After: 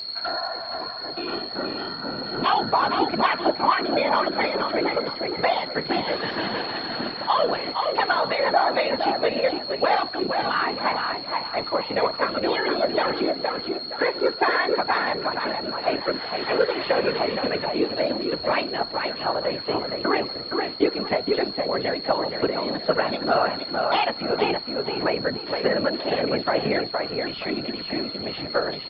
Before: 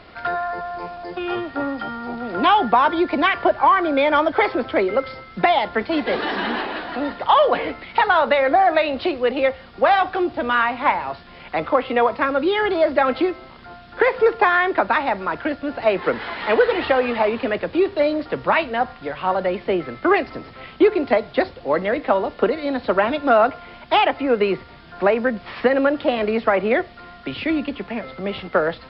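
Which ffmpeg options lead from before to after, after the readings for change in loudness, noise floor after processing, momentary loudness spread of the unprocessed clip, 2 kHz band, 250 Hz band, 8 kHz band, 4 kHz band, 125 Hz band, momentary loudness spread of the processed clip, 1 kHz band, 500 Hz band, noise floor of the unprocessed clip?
−4.0 dB, −34 dBFS, 11 LU, −4.5 dB, −4.5 dB, can't be measured, +4.5 dB, −0.5 dB, 6 LU, −4.5 dB, −4.5 dB, −43 dBFS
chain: -filter_complex "[0:a]highpass=130,aeval=exprs='val(0)+0.0708*sin(2*PI*4300*n/s)':channel_layout=same,asplit=2[link_01][link_02];[link_02]adelay=468,lowpass=frequency=4100:poles=1,volume=-4dB,asplit=2[link_03][link_04];[link_04]adelay=468,lowpass=frequency=4100:poles=1,volume=0.33,asplit=2[link_05][link_06];[link_06]adelay=468,lowpass=frequency=4100:poles=1,volume=0.33,asplit=2[link_07][link_08];[link_08]adelay=468,lowpass=frequency=4100:poles=1,volume=0.33[link_09];[link_01][link_03][link_05][link_07][link_09]amix=inputs=5:normalize=0,afftfilt=real='hypot(re,im)*cos(2*PI*random(0))':imag='hypot(re,im)*sin(2*PI*random(1))':win_size=512:overlap=0.75"

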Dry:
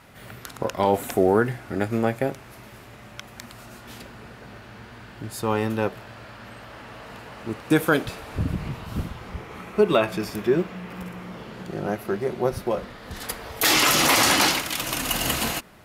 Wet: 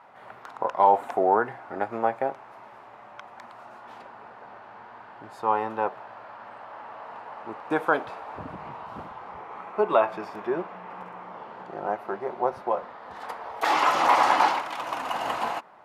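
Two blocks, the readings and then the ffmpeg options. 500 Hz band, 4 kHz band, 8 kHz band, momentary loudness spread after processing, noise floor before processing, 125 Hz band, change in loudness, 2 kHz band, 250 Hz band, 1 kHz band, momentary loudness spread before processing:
−3.5 dB, −13.0 dB, below −15 dB, 24 LU, −45 dBFS, −17.5 dB, −2.5 dB, −5.5 dB, −10.0 dB, +4.5 dB, 24 LU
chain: -af "bandpass=frequency=890:width_type=q:width=2.6:csg=0,volume=7dB"

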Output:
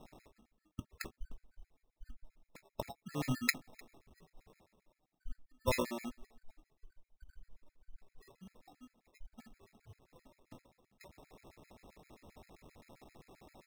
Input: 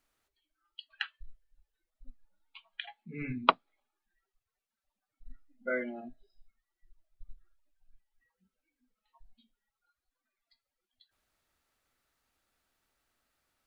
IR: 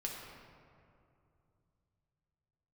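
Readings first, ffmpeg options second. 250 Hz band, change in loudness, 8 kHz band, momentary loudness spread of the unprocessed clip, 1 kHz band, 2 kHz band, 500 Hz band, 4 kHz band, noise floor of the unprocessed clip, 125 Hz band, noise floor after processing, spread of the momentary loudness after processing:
0.0 dB, −4.0 dB, can't be measured, 22 LU, −11.0 dB, −2.5 dB, −2.5 dB, −4.5 dB, below −85 dBFS, +4.5 dB, below −85 dBFS, 24 LU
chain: -filter_complex "[0:a]areverse,acompressor=mode=upward:threshold=-43dB:ratio=2.5,areverse,asplit=2[link_01][link_02];[link_02]adelay=303.2,volume=-27dB,highshelf=frequency=4000:gain=-6.82[link_03];[link_01][link_03]amix=inputs=2:normalize=0,acrusher=samples=29:mix=1:aa=0.000001,afftfilt=real='re*gt(sin(2*PI*7.6*pts/sr)*(1-2*mod(floor(b*sr/1024/1300),2)),0)':imag='im*gt(sin(2*PI*7.6*pts/sr)*(1-2*mod(floor(b*sr/1024/1300),2)),0)':win_size=1024:overlap=0.75,volume=4dB"

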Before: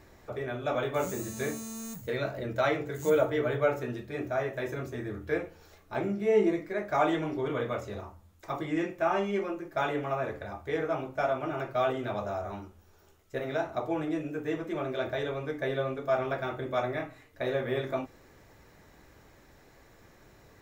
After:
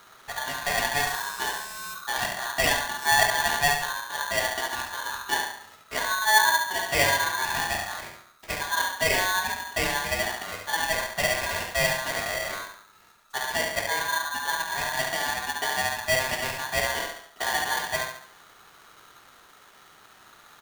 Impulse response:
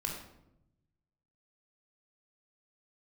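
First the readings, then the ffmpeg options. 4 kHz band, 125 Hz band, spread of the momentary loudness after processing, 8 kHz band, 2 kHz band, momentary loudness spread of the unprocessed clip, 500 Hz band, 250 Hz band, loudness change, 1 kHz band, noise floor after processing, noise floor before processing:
+18.0 dB, −3.0 dB, 11 LU, can't be measured, +13.5 dB, 11 LU, −3.5 dB, −9.0 dB, +6.0 dB, +7.5 dB, −54 dBFS, −58 dBFS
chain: -filter_complex "[0:a]acrusher=bits=4:mode=log:mix=0:aa=0.000001,asplit=2[link_01][link_02];[link_02]adelay=70,lowpass=frequency=3600:poles=1,volume=-5dB,asplit=2[link_03][link_04];[link_04]adelay=70,lowpass=frequency=3600:poles=1,volume=0.44,asplit=2[link_05][link_06];[link_06]adelay=70,lowpass=frequency=3600:poles=1,volume=0.44,asplit=2[link_07][link_08];[link_08]adelay=70,lowpass=frequency=3600:poles=1,volume=0.44,asplit=2[link_09][link_10];[link_10]adelay=70,lowpass=frequency=3600:poles=1,volume=0.44[link_11];[link_01][link_03][link_05][link_07][link_09][link_11]amix=inputs=6:normalize=0,aeval=exprs='val(0)*sgn(sin(2*PI*1300*n/s))':channel_layout=same,volume=2.5dB"

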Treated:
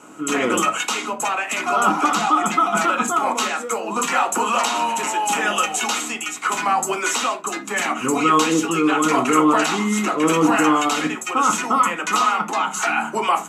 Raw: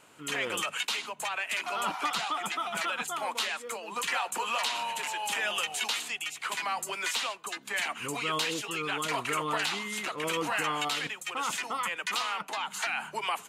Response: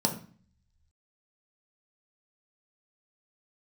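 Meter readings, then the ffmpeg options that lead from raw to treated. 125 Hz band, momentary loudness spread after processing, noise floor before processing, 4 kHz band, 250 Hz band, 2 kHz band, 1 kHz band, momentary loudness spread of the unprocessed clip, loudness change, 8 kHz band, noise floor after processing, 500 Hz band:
+13.5 dB, 7 LU, −50 dBFS, +5.0 dB, +21.5 dB, +8.5 dB, +14.5 dB, 4 LU, +12.0 dB, +12.0 dB, −32 dBFS, +14.0 dB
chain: -filter_complex "[1:a]atrim=start_sample=2205,afade=type=out:start_time=0.18:duration=0.01,atrim=end_sample=8379,asetrate=61740,aresample=44100[link_01];[0:a][link_01]afir=irnorm=-1:irlink=0,volume=4.5dB"

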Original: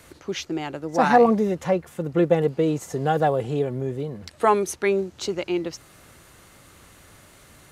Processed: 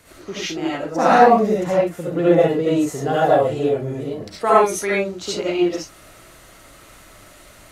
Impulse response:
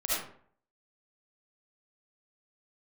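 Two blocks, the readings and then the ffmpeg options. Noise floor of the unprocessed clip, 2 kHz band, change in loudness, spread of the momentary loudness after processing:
−52 dBFS, +5.0 dB, +5.0 dB, 14 LU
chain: -filter_complex "[1:a]atrim=start_sample=2205,atrim=end_sample=6174[link_01];[0:a][link_01]afir=irnorm=-1:irlink=0,volume=-1.5dB"

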